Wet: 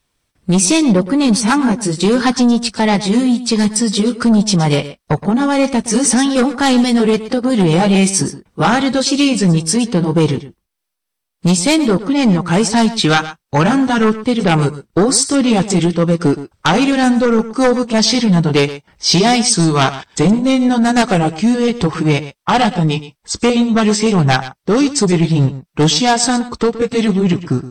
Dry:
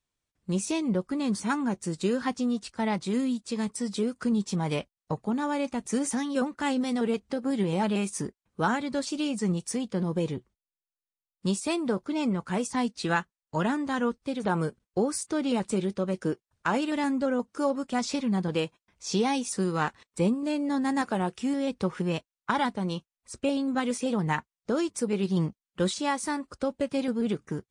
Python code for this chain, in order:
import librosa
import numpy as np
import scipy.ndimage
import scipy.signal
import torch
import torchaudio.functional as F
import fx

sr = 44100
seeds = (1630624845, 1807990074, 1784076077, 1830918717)

y = fx.pitch_glide(x, sr, semitones=-3.0, runs='starting unshifted')
y = fx.notch(y, sr, hz=6900.0, q=7.3)
y = fx.fold_sine(y, sr, drive_db=8, ceiling_db=-13.0)
y = fx.dynamic_eq(y, sr, hz=5500.0, q=0.74, threshold_db=-40.0, ratio=4.0, max_db=6)
y = y + 10.0 ** (-14.5 / 20.0) * np.pad(y, (int(119 * sr / 1000.0), 0))[:len(y)]
y = F.gain(torch.from_numpy(y), 6.0).numpy()